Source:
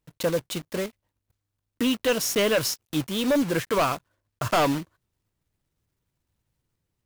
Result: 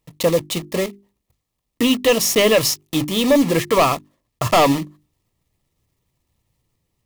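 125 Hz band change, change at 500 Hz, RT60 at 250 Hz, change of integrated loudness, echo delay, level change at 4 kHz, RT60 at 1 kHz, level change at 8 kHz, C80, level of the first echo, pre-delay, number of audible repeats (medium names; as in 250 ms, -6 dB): +7.0 dB, +8.0 dB, no reverb, +7.5 dB, no echo, +8.0 dB, no reverb, +8.0 dB, no reverb, no echo, no reverb, no echo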